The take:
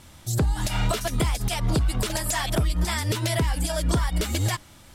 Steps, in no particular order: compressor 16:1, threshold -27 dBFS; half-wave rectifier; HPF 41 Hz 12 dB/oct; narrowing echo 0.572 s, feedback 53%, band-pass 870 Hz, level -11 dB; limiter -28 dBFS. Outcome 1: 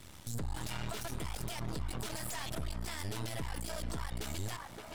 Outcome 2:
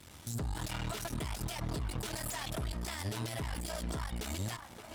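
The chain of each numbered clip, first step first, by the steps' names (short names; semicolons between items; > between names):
HPF > half-wave rectifier > narrowing echo > limiter > compressor; half-wave rectifier > HPF > compressor > narrowing echo > limiter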